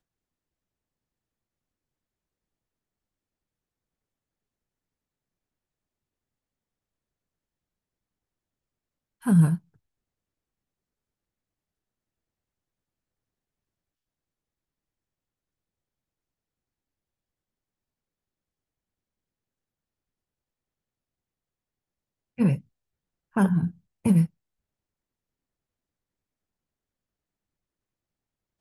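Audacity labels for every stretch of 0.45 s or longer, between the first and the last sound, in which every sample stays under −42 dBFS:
9.580000	22.380000	silence
22.610000	23.360000	silence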